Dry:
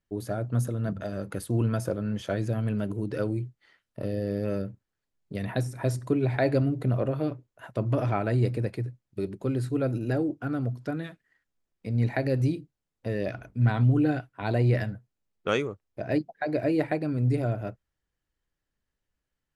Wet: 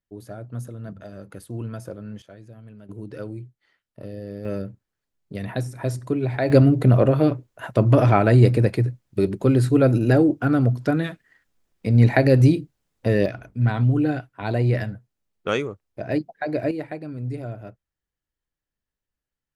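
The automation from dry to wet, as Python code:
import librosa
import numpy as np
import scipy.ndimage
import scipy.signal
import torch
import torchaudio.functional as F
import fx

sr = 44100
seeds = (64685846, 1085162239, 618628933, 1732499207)

y = fx.gain(x, sr, db=fx.steps((0.0, -6.0), (2.22, -16.0), (2.89, -5.0), (4.45, 1.5), (6.5, 10.5), (13.26, 2.5), (16.71, -5.0)))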